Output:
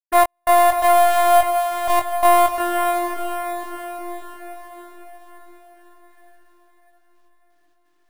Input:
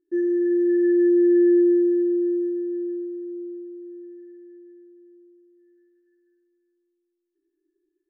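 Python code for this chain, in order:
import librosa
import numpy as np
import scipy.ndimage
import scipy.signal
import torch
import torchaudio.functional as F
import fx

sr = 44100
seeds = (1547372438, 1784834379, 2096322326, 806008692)

p1 = np.minimum(x, 2.0 * 10.0 ** (-26.0 / 20.0) - x)
p2 = fx.low_shelf_res(p1, sr, hz=600.0, db=-13.5, q=3.0)
p3 = fx.notch(p2, sr, hz=1000.0, q=8.3)
p4 = fx.over_compress(p3, sr, threshold_db=-30.0, ratio=-0.5)
p5 = p3 + (p4 * 10.0 ** (2.5 / 20.0))
p6 = 10.0 ** (-17.5 / 20.0) * np.tanh(p5 / 10.0 ** (-17.5 / 20.0))
p7 = fx.step_gate(p6, sr, bpm=128, pattern='.x..xx.xxxxx...', floor_db=-60.0, edge_ms=4.5)
p8 = fx.doubler(p7, sr, ms=20.0, db=-3)
p9 = p8 + fx.echo_diffused(p8, sr, ms=598, feedback_pct=50, wet_db=-6.5, dry=0)
p10 = np.repeat(p9[::4], 4)[:len(p9)]
y = p10 * 10.0 ** (7.0 / 20.0)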